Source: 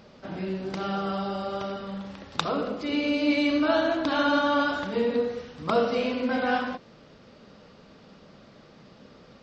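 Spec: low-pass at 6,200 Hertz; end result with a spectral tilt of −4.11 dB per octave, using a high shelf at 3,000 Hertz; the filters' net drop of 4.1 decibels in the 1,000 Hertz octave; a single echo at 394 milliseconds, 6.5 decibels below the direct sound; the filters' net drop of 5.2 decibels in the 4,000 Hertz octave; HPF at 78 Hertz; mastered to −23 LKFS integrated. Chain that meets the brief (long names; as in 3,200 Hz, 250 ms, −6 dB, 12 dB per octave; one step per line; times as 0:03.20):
high-pass filter 78 Hz
low-pass filter 6,200 Hz
parametric band 1,000 Hz −5 dB
high-shelf EQ 3,000 Hz −3.5 dB
parametric band 4,000 Hz −3.5 dB
single-tap delay 394 ms −6.5 dB
level +5 dB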